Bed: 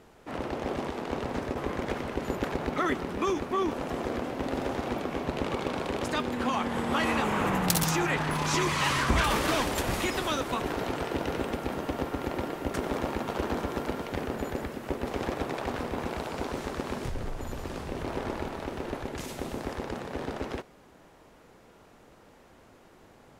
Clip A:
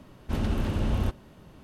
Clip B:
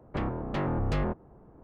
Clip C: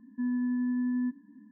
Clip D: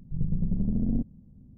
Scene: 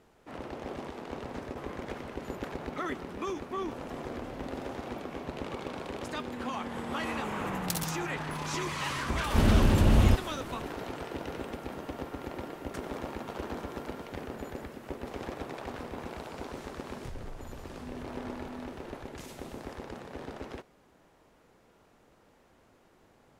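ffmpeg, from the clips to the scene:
-filter_complex "[0:a]volume=-7dB[a];[2:a]acompressor=threshold=-32dB:ratio=6:attack=3.2:release=140:knee=1:detection=peak[b];[1:a]acontrast=86[c];[b]atrim=end=1.63,asetpts=PTS-STARTPTS,volume=-13.5dB,afade=t=in:d=0.004:c=hsin,afade=t=out:st=1.626:d=0.004:c=hsin,adelay=3420[d];[c]atrim=end=1.63,asetpts=PTS-STARTPTS,volume=-2dB,afade=t=in:d=0.004:c=hsin,afade=t=out:st=1.626:d=0.004:c=hsin,adelay=9050[e];[3:a]atrim=end=1.51,asetpts=PTS-STARTPTS,volume=-15dB,afade=t=in:d=0.004:c=hsin,afade=t=out:st=1.506:d=0.004:c=hsin,adelay=17630[f];[a][d][e][f]amix=inputs=4:normalize=0"

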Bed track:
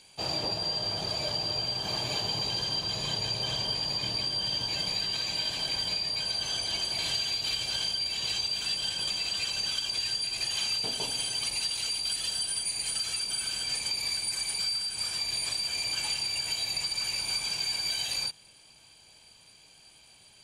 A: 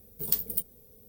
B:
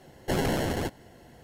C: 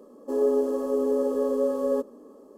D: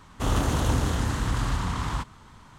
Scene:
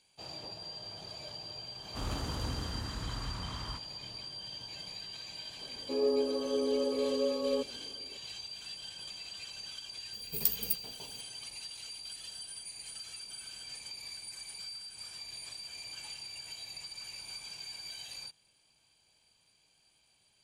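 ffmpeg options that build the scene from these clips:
-filter_complex "[0:a]volume=-13.5dB[a];[3:a]highshelf=f=4.9k:g=-7.5[b];[4:a]atrim=end=2.58,asetpts=PTS-STARTPTS,volume=-13dB,afade=t=in:d=0.004:c=hsin,afade=t=out:st=2.576:d=0.004:c=hsin,adelay=1750[c];[b]atrim=end=2.57,asetpts=PTS-STARTPTS,volume=-6.5dB,afade=t=in:d=0.004:c=hsin,afade=t=out:st=2.566:d=0.004:c=hsin,adelay=247401S[d];[1:a]atrim=end=1.08,asetpts=PTS-STARTPTS,volume=-2.5dB,afade=t=in:d=0.004:c=hsin,afade=t=out:st=1.076:d=0.004:c=hsin,adelay=10130[e];[a][c][d][e]amix=inputs=4:normalize=0"

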